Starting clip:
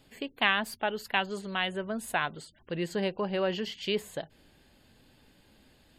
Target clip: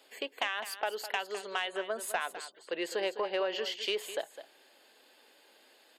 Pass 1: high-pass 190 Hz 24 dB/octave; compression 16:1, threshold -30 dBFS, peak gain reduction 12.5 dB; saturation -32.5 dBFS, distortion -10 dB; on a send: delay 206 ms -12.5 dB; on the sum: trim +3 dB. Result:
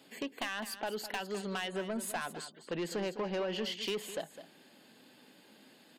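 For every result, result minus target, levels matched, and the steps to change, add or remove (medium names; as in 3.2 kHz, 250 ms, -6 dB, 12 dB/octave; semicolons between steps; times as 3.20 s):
250 Hz band +9.0 dB; saturation: distortion +13 dB
change: high-pass 400 Hz 24 dB/octave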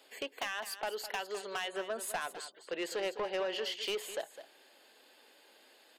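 saturation: distortion +12 dB
change: saturation -21.5 dBFS, distortion -22 dB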